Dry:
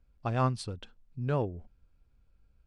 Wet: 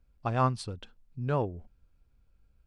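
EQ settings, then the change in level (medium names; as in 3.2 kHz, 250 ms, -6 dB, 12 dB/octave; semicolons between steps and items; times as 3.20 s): dynamic bell 1 kHz, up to +4 dB, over -41 dBFS, Q 1.2; 0.0 dB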